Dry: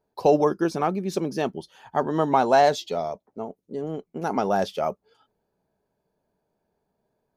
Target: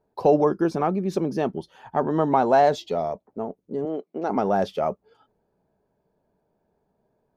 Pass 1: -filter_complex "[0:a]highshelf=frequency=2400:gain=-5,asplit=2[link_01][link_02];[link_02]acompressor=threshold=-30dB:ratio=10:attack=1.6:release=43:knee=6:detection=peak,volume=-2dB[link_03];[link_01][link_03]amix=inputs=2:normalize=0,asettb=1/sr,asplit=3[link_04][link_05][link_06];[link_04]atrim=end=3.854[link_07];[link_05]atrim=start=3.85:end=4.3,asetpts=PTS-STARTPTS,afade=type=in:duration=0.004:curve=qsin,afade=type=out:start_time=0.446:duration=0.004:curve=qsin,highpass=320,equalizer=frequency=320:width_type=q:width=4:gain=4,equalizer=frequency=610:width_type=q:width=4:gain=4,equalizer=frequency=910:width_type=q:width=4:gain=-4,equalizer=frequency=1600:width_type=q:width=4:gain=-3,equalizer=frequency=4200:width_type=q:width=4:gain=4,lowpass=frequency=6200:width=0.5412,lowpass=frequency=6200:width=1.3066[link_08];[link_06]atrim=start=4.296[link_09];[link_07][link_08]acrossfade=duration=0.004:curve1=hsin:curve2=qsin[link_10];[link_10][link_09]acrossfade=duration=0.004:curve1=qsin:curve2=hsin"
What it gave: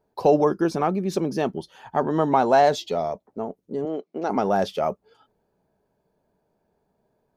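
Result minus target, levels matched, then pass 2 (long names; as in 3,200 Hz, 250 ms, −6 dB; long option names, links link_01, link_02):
4,000 Hz band +4.5 dB
-filter_complex "[0:a]highshelf=frequency=2400:gain=-12,asplit=2[link_01][link_02];[link_02]acompressor=threshold=-30dB:ratio=10:attack=1.6:release=43:knee=6:detection=peak,volume=-2dB[link_03];[link_01][link_03]amix=inputs=2:normalize=0,asettb=1/sr,asplit=3[link_04][link_05][link_06];[link_04]atrim=end=3.854[link_07];[link_05]atrim=start=3.85:end=4.3,asetpts=PTS-STARTPTS,afade=type=in:duration=0.004:curve=qsin,afade=type=out:start_time=0.446:duration=0.004:curve=qsin,highpass=320,equalizer=frequency=320:width_type=q:width=4:gain=4,equalizer=frequency=610:width_type=q:width=4:gain=4,equalizer=frequency=910:width_type=q:width=4:gain=-4,equalizer=frequency=1600:width_type=q:width=4:gain=-3,equalizer=frequency=4200:width_type=q:width=4:gain=4,lowpass=frequency=6200:width=0.5412,lowpass=frequency=6200:width=1.3066[link_08];[link_06]atrim=start=4.296[link_09];[link_07][link_08]acrossfade=duration=0.004:curve1=hsin:curve2=qsin[link_10];[link_10][link_09]acrossfade=duration=0.004:curve1=qsin:curve2=hsin"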